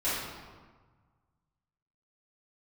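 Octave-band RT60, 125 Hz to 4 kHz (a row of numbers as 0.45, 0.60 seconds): 2.2, 1.6, 1.4, 1.5, 1.2, 0.95 seconds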